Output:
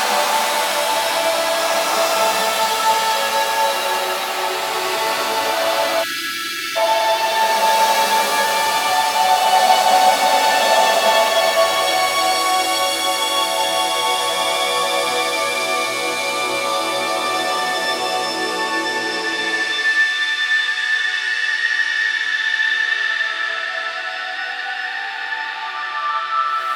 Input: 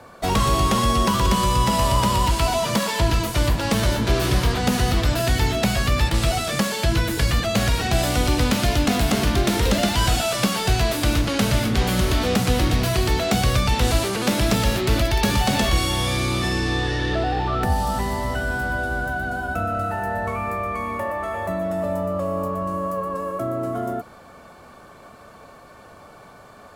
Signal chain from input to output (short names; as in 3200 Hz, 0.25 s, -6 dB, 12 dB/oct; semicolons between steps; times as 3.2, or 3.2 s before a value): LFO high-pass saw down 0.12 Hz 610–1800 Hz; Paulstretch 8.1×, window 0.25 s, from 14.27; spectral delete 6.03–6.76, 400–1300 Hz; gain +4.5 dB